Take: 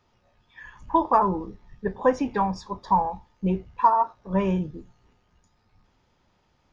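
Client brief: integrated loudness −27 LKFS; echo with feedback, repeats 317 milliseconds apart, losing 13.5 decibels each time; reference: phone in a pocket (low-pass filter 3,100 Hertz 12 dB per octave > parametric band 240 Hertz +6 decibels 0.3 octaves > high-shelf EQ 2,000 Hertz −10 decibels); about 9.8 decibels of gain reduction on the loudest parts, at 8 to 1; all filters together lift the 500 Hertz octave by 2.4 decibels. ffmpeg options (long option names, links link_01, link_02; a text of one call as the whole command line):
ffmpeg -i in.wav -af "equalizer=frequency=500:width_type=o:gain=3.5,acompressor=threshold=-22dB:ratio=8,lowpass=3100,equalizer=frequency=240:width_type=o:width=0.3:gain=6,highshelf=frequency=2000:gain=-10,aecho=1:1:317|634:0.211|0.0444,volume=3dB" out.wav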